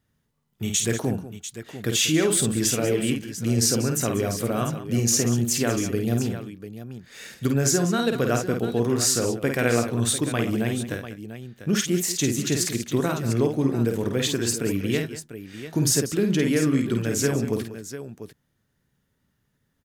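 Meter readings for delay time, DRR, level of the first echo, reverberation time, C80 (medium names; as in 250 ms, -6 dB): 51 ms, no reverb, -5.0 dB, no reverb, no reverb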